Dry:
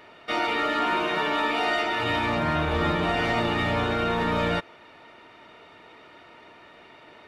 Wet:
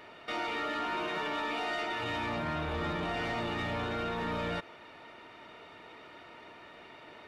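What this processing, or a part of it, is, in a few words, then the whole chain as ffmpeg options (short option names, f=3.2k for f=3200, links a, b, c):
soft clipper into limiter: -af "asoftclip=type=tanh:threshold=-19dB,alimiter=level_in=3dB:limit=-24dB:level=0:latency=1:release=48,volume=-3dB,volume=-1.5dB"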